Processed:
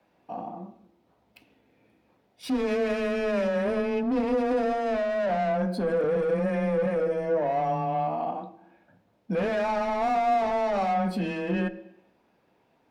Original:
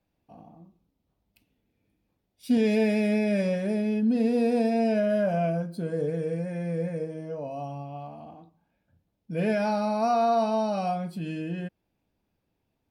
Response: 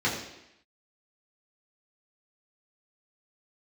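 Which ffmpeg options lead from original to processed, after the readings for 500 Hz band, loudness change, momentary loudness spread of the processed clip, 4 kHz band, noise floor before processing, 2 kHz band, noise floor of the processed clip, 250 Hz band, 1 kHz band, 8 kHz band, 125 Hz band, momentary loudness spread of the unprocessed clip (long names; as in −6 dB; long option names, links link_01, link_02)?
+2.0 dB, 0.0 dB, 12 LU, +0.5 dB, −78 dBFS, +3.0 dB, −68 dBFS, −3.0 dB, +3.5 dB, can't be measured, −2.5 dB, 12 LU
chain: -filter_complex "[0:a]asplit=2[link_01][link_02];[link_02]highpass=frequency=720:poles=1,volume=25dB,asoftclip=type=tanh:threshold=-14dB[link_03];[link_01][link_03]amix=inputs=2:normalize=0,lowpass=frequency=1400:poles=1,volume=-6dB,alimiter=limit=-22dB:level=0:latency=1:release=92,afreqshift=14,asplit=2[link_04][link_05];[1:a]atrim=start_sample=2205[link_06];[link_05][link_06]afir=irnorm=-1:irlink=0,volume=-22.5dB[link_07];[link_04][link_07]amix=inputs=2:normalize=0"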